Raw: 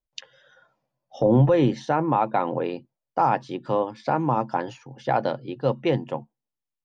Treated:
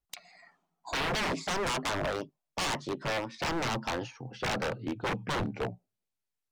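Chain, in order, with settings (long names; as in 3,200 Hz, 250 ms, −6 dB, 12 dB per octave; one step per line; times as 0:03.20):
gliding playback speed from 135% → 75%
wave folding −25.5 dBFS
highs frequency-modulated by the lows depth 0.19 ms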